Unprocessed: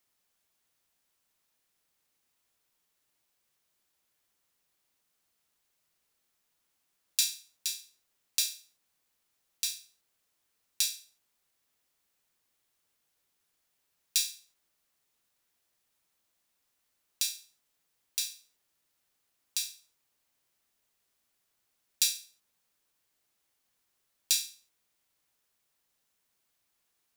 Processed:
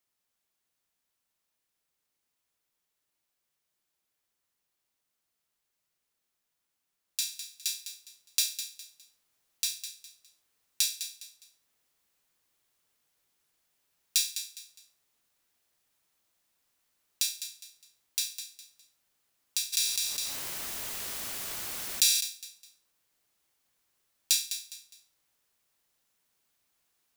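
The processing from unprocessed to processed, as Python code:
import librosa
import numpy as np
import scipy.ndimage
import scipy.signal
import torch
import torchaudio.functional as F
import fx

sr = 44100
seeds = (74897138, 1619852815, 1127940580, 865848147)

p1 = fx.rider(x, sr, range_db=10, speed_s=0.5)
p2 = p1 + fx.echo_feedback(p1, sr, ms=205, feedback_pct=31, wet_db=-10.5, dry=0)
p3 = fx.env_flatten(p2, sr, amount_pct=70, at=(19.72, 22.2), fade=0.02)
y = p3 * librosa.db_to_amplitude(-2.5)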